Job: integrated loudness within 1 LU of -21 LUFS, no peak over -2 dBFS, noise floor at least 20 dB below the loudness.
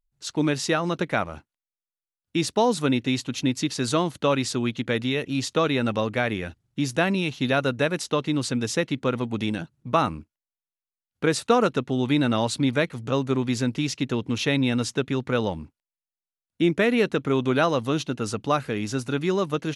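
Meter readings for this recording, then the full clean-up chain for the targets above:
loudness -25.0 LUFS; peak -7.0 dBFS; loudness target -21.0 LUFS
-> gain +4 dB

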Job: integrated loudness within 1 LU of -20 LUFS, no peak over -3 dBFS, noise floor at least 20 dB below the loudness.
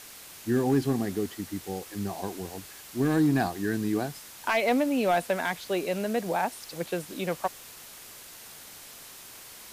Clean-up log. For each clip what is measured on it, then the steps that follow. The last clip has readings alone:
clipped 0.3%; flat tops at -16.5 dBFS; noise floor -47 dBFS; noise floor target -49 dBFS; loudness -29.0 LUFS; peak -16.5 dBFS; loudness target -20.0 LUFS
-> clip repair -16.5 dBFS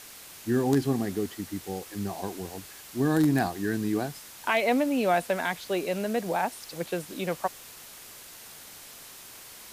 clipped 0.0%; noise floor -47 dBFS; noise floor target -49 dBFS
-> denoiser 6 dB, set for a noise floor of -47 dBFS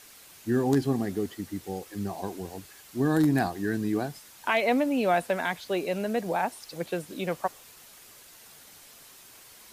noise floor -52 dBFS; loudness -28.5 LUFS; peak -9.0 dBFS; loudness target -20.0 LUFS
-> gain +8.5 dB; limiter -3 dBFS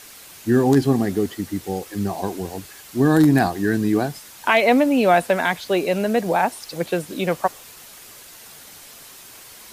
loudness -20.5 LUFS; peak -3.0 dBFS; noise floor -43 dBFS

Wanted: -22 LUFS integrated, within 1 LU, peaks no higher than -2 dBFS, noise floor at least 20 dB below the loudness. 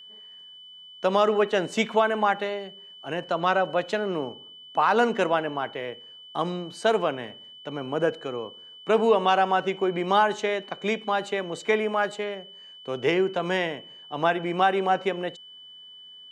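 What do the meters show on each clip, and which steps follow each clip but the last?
steady tone 3000 Hz; tone level -44 dBFS; loudness -25.5 LUFS; peak -10.0 dBFS; loudness target -22.0 LUFS
-> notch 3000 Hz, Q 30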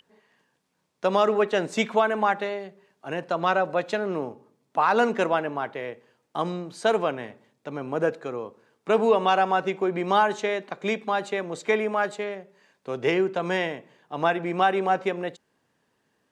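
steady tone none; loudness -25.5 LUFS; peak -9.5 dBFS; loudness target -22.0 LUFS
-> gain +3.5 dB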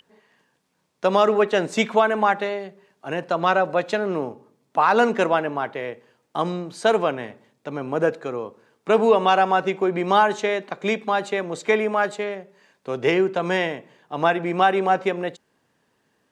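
loudness -22.0 LUFS; peak -6.0 dBFS; noise floor -70 dBFS

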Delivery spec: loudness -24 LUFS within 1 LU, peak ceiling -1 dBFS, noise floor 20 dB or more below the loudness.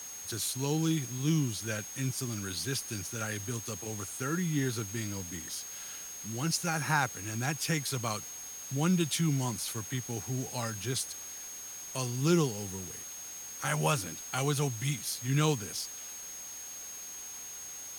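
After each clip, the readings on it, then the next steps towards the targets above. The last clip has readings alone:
steady tone 6500 Hz; tone level -42 dBFS; noise floor -44 dBFS; noise floor target -53 dBFS; loudness -33.0 LUFS; peak -14.0 dBFS; loudness target -24.0 LUFS
-> notch 6500 Hz, Q 30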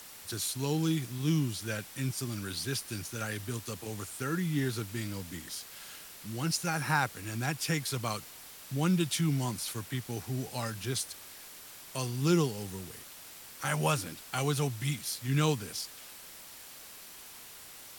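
steady tone none; noise floor -49 dBFS; noise floor target -53 dBFS
-> denoiser 6 dB, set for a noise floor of -49 dBFS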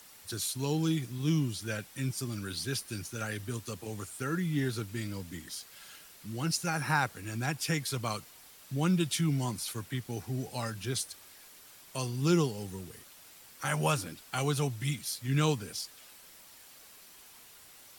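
noise floor -55 dBFS; loudness -33.0 LUFS; peak -14.5 dBFS; loudness target -24.0 LUFS
-> gain +9 dB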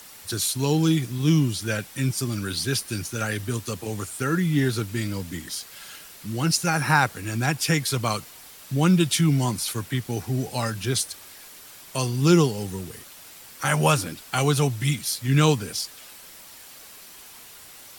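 loudness -24.0 LUFS; peak -5.5 dBFS; noise floor -46 dBFS

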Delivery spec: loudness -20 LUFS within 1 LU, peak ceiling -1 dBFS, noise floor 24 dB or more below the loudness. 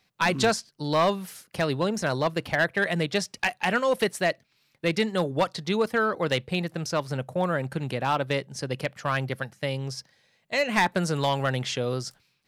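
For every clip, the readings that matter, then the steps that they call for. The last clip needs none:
clipped 0.5%; flat tops at -15.5 dBFS; loudness -27.0 LUFS; peak -15.5 dBFS; loudness target -20.0 LUFS
-> clip repair -15.5 dBFS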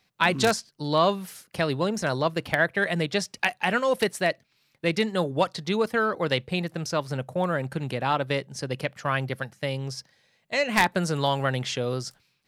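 clipped 0.0%; loudness -26.5 LUFS; peak -6.5 dBFS; loudness target -20.0 LUFS
-> gain +6.5 dB; limiter -1 dBFS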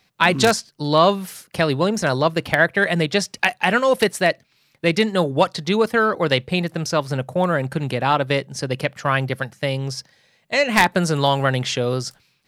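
loudness -20.0 LUFS; peak -1.0 dBFS; noise floor -63 dBFS

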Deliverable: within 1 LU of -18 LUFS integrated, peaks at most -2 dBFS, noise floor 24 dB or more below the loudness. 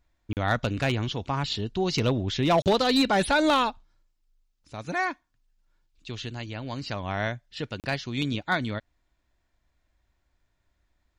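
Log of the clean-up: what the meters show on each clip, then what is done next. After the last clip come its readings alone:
clipped 0.4%; flat tops at -15.5 dBFS; dropouts 3; longest dropout 38 ms; loudness -27.0 LUFS; peak -15.5 dBFS; loudness target -18.0 LUFS
-> clip repair -15.5 dBFS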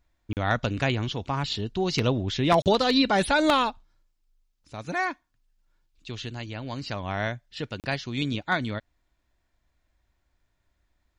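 clipped 0.0%; dropouts 3; longest dropout 38 ms
-> interpolate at 0.33/2.62/7.8, 38 ms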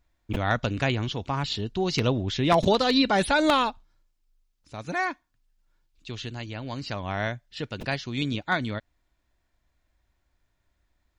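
dropouts 0; loudness -26.5 LUFS; peak -6.5 dBFS; loudness target -18.0 LUFS
-> gain +8.5 dB; limiter -2 dBFS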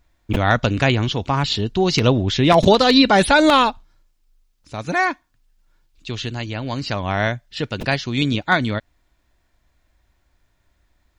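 loudness -18.5 LUFS; peak -2.0 dBFS; noise floor -66 dBFS

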